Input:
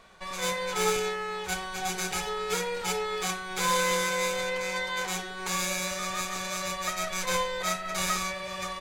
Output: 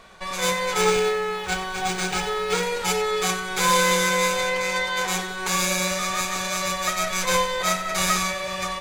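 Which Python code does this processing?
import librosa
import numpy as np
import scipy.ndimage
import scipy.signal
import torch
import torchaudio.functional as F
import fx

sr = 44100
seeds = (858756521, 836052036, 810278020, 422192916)

y = fx.echo_feedback(x, sr, ms=93, feedback_pct=59, wet_db=-14.0)
y = fx.resample_linear(y, sr, factor=3, at=(0.81, 2.63))
y = y * 10.0 ** (6.5 / 20.0)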